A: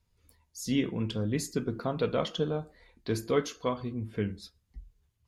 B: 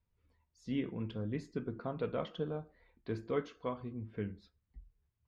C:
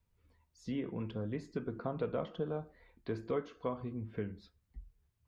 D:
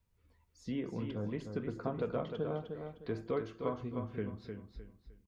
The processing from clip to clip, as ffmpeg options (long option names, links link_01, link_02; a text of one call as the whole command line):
ffmpeg -i in.wav -af "lowpass=2500,volume=-7.5dB" out.wav
ffmpeg -i in.wav -filter_complex "[0:a]acrossover=split=470|1300[link_01][link_02][link_03];[link_01]acompressor=threshold=-41dB:ratio=4[link_04];[link_02]acompressor=threshold=-40dB:ratio=4[link_05];[link_03]acompressor=threshold=-59dB:ratio=4[link_06];[link_04][link_05][link_06]amix=inputs=3:normalize=0,volume=4dB" out.wav
ffmpeg -i in.wav -af "aecho=1:1:306|612|918|1224:0.473|0.142|0.0426|0.0128" out.wav